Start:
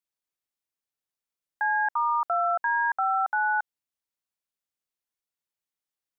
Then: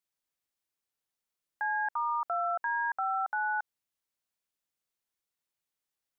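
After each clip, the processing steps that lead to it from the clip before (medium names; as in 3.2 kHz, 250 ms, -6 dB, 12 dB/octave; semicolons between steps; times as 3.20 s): peak limiter -26 dBFS, peak gain reduction 7.5 dB; trim +1.5 dB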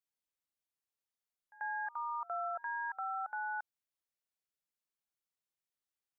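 pre-echo 89 ms -21 dB; trim -7.5 dB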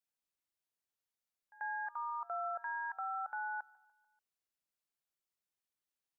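feedback delay 146 ms, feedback 54%, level -22.5 dB; trim -1 dB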